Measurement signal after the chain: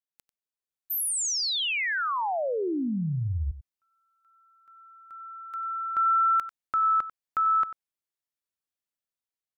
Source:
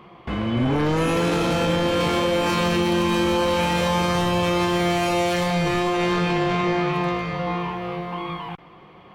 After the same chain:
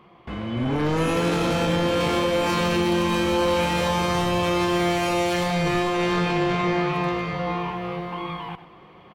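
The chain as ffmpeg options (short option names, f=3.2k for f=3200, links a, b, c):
-af "dynaudnorm=f=480:g=3:m=5dB,aecho=1:1:94:0.211,volume=-6dB"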